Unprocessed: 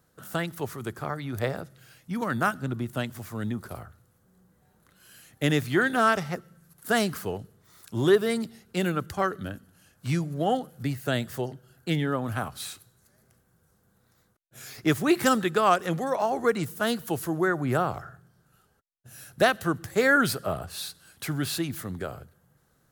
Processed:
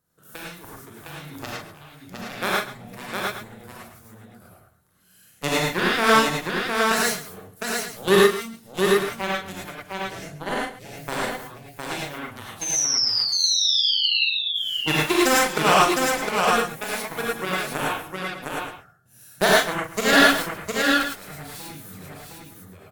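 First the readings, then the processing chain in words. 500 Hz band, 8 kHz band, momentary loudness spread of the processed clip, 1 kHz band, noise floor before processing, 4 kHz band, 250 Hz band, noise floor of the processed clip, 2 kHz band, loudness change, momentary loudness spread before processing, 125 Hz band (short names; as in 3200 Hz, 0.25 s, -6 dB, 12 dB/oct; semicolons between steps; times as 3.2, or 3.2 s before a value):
+3.0 dB, +12.5 dB, 20 LU, +5.0 dB, -67 dBFS, +14.5 dB, +0.5 dB, -54 dBFS, +6.5 dB, +6.0 dB, 16 LU, -4.0 dB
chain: high shelf 7500 Hz +7.5 dB; added harmonics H 7 -15 dB, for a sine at -6 dBFS; painted sound fall, 12.61–14.25, 2600–6400 Hz -29 dBFS; tapped delay 40/135/709/821 ms -6.5/-15/-3.5/-13 dB; non-linear reverb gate 0.13 s rising, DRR -4.5 dB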